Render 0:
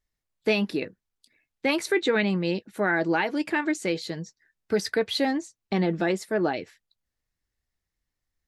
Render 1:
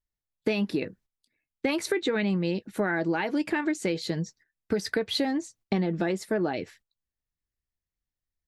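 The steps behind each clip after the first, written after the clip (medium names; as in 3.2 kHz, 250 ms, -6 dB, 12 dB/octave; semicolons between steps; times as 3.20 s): gate -56 dBFS, range -14 dB; bass shelf 320 Hz +5.5 dB; compression, threshold -26 dBFS, peak gain reduction 9.5 dB; trim +2.5 dB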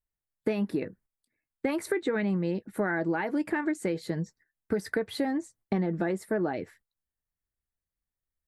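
high-order bell 4.1 kHz -9.5 dB; trim -1.5 dB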